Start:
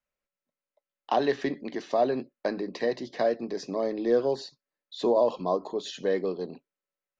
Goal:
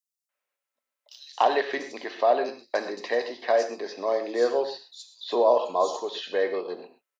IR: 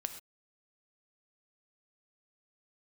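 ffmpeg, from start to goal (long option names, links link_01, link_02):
-filter_complex "[0:a]highpass=590,acrossover=split=4700[link_01][link_02];[link_01]adelay=290[link_03];[link_03][link_02]amix=inputs=2:normalize=0[link_04];[1:a]atrim=start_sample=2205[link_05];[link_04][link_05]afir=irnorm=-1:irlink=0,volume=7dB"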